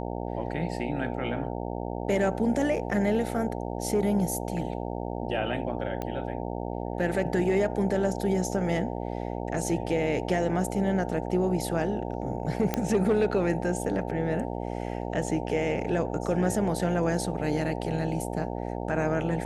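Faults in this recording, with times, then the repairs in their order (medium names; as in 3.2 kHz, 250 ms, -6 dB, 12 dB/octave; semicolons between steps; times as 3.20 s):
buzz 60 Hz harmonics 15 -33 dBFS
6.02 s: pop -19 dBFS
12.74 s: pop -11 dBFS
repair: de-click; de-hum 60 Hz, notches 15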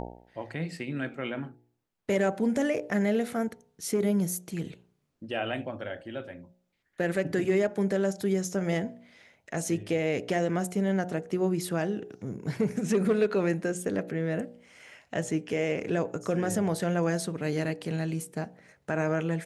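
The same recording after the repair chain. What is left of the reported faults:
nothing left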